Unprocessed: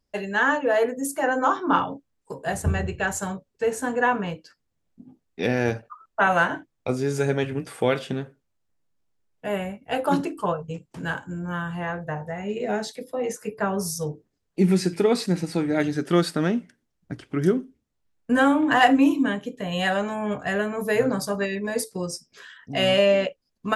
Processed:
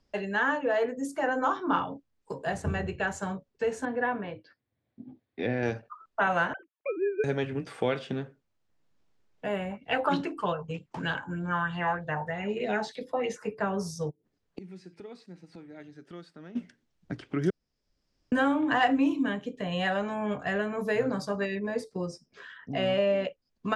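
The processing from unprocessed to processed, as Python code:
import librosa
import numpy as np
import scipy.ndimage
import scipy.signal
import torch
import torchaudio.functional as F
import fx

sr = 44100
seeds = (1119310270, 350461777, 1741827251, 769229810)

y = fx.cabinet(x, sr, low_hz=110.0, low_slope=12, high_hz=3600.0, hz=(110.0, 170.0, 430.0, 910.0, 1300.0, 2800.0), db=(9, -10, -3, -5, -7, -8), at=(3.85, 5.63))
y = fx.sine_speech(y, sr, at=(6.53, 7.24))
y = fx.bell_lfo(y, sr, hz=3.2, low_hz=840.0, high_hz=3900.0, db=13, at=(9.71, 13.55))
y = fx.gate_flip(y, sr, shuts_db=-25.0, range_db=-27, at=(14.09, 16.55), fade=0.02)
y = fx.high_shelf(y, sr, hz=2300.0, db=-8.5, at=(21.59, 23.25))
y = fx.edit(y, sr, fx.room_tone_fill(start_s=17.5, length_s=0.82), tone=tone)
y = scipy.signal.sosfilt(scipy.signal.butter(2, 5500.0, 'lowpass', fs=sr, output='sos'), y)
y = fx.band_squash(y, sr, depth_pct=40)
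y = F.gain(torch.from_numpy(y), -5.0).numpy()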